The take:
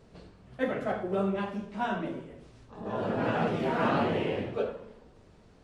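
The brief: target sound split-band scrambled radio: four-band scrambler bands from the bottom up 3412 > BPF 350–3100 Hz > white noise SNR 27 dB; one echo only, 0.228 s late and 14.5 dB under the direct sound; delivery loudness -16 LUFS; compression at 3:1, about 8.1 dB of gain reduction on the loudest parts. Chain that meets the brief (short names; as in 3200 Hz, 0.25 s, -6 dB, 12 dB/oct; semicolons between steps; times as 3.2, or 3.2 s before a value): compressor 3:1, threshold -34 dBFS; echo 0.228 s -14.5 dB; four-band scrambler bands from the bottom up 3412; BPF 350–3100 Hz; white noise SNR 27 dB; gain +21.5 dB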